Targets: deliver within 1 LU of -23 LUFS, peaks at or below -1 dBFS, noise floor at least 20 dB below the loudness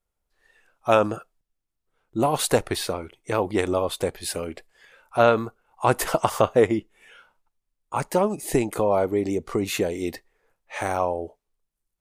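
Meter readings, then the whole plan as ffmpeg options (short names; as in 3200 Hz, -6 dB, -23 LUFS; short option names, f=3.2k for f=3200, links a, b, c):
loudness -24.5 LUFS; peak -4.0 dBFS; loudness target -23.0 LUFS
-> -af "volume=1.5dB"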